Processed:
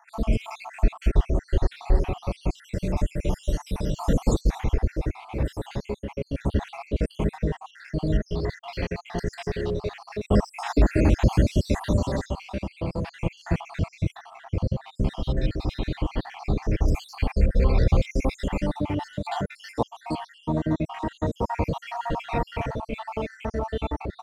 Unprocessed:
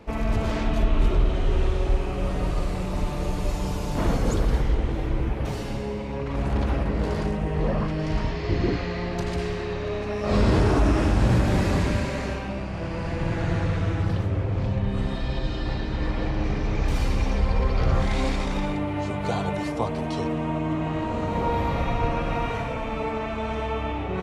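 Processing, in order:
time-frequency cells dropped at random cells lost 67%
dynamic equaliser 1,300 Hz, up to −5 dB, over −49 dBFS, Q 1.9
in parallel at −6 dB: dead-zone distortion −46 dBFS

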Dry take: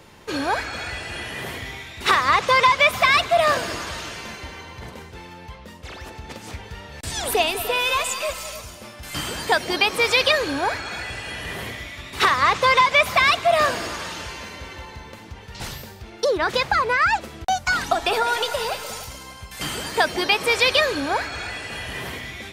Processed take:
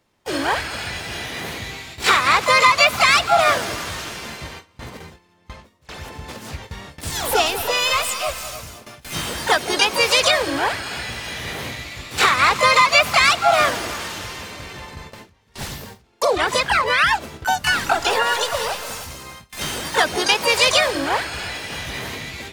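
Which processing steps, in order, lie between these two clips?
pitch-shifted copies added +3 semitones −4 dB, +12 semitones −5 dB
noise gate with hold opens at −25 dBFS

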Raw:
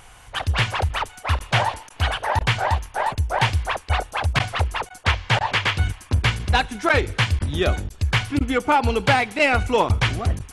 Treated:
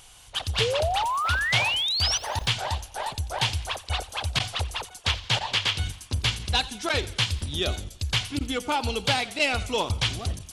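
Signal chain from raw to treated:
0:01.02–0:02.51: background noise violet −62 dBFS
high shelf with overshoot 2,600 Hz +9 dB, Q 1.5
0:00.60–0:02.18: sound drawn into the spectrogram rise 430–6,100 Hz −18 dBFS
feedback echo with a swinging delay time 88 ms, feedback 46%, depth 134 cents, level −18.5 dB
level −8 dB

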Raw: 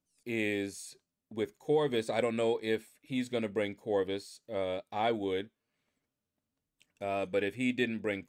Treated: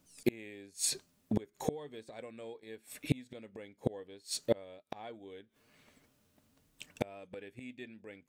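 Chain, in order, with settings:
gate with flip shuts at −32 dBFS, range −33 dB
level +16.5 dB

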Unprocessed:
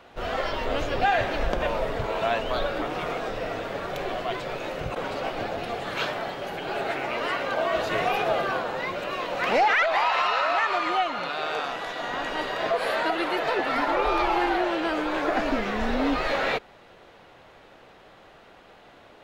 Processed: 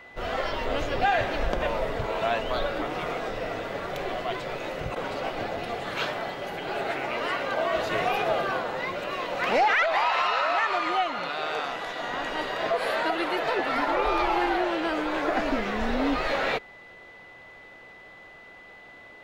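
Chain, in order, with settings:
steady tone 2,000 Hz −46 dBFS
level −1 dB

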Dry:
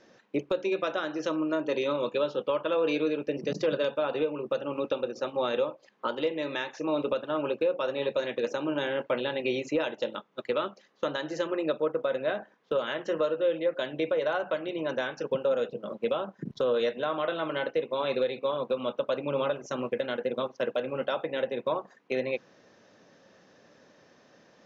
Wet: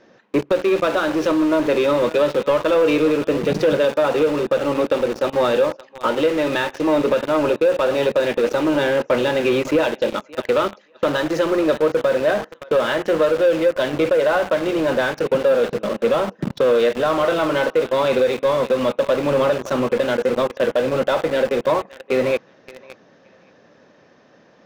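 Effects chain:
feedback echo with a high-pass in the loop 570 ms, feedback 25%, high-pass 610 Hz, level −16 dB
in parallel at −5 dB: log-companded quantiser 2 bits
on the sum: low-pass filter 2,900 Hz 6 dB per octave
level +7 dB

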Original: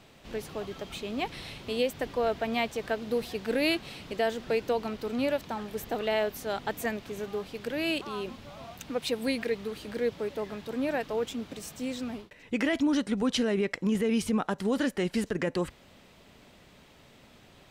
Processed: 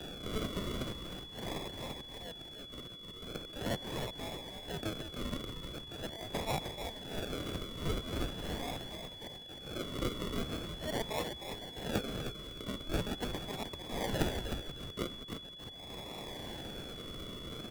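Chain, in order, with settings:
high-pass filter 740 Hz 24 dB per octave
high-shelf EQ 2,300 Hz +10.5 dB
downward compressor 2.5 to 1, threshold −49 dBFS, peak gain reduction 19.5 dB
volume swells 382 ms
upward compression, threshold −53 dBFS
sample-and-hold swept by an LFO 41×, swing 60% 0.42 Hz
pitch vibrato 2.8 Hz 55 cents
echo with shifted repeats 309 ms, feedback 38%, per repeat −78 Hz, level −5.5 dB
steady tone 3,400 Hz −56 dBFS
multiband upward and downward expander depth 40%
level +10.5 dB

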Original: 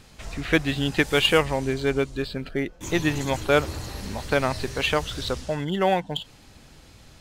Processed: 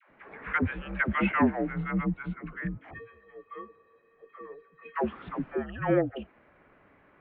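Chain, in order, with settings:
0:02.90–0:04.95: tuned comb filter 690 Hz, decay 0.18 s, harmonics all, mix 100%
single-sideband voice off tune −230 Hz 380–2,300 Hz
all-pass dispersion lows, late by 97 ms, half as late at 550 Hz
level −2 dB

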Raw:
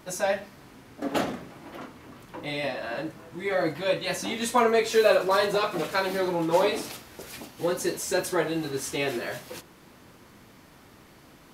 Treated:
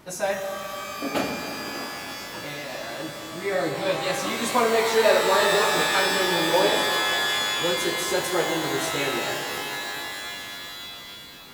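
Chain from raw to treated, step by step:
0:02.45–0:03.00: output level in coarse steps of 12 dB
reverb with rising layers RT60 3.8 s, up +12 semitones, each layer −2 dB, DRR 4.5 dB

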